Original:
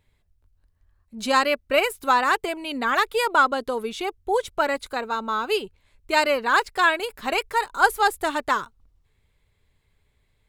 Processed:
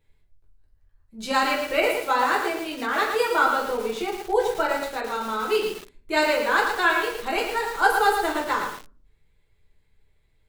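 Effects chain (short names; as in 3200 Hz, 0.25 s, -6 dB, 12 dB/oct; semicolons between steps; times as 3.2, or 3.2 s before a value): 1.83–3.41 elliptic high-pass 190 Hz; shoebox room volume 40 m³, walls mixed, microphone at 0.74 m; lo-fi delay 0.113 s, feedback 35%, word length 5-bit, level -5 dB; gain -6 dB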